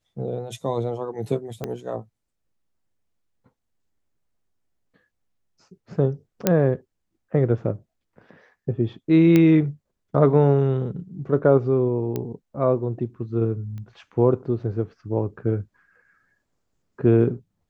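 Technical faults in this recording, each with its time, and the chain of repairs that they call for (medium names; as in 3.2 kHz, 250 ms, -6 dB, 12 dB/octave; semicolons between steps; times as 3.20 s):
1.64 s: pop -15 dBFS
6.47 s: pop -3 dBFS
9.36 s: pop -7 dBFS
12.16 s: pop -14 dBFS
13.78 s: pop -27 dBFS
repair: de-click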